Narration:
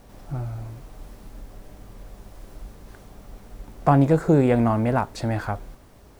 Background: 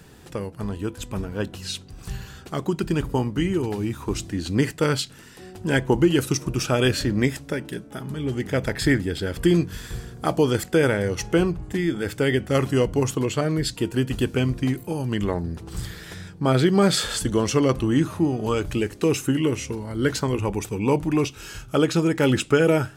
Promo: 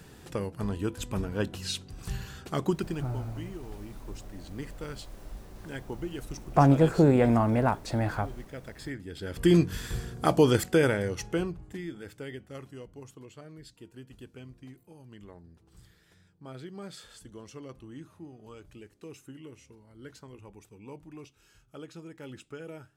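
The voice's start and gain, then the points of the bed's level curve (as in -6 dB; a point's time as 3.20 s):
2.70 s, -3.0 dB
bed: 2.70 s -2.5 dB
3.15 s -18.5 dB
8.97 s -18.5 dB
9.55 s -1 dB
10.53 s -1 dB
12.81 s -24.5 dB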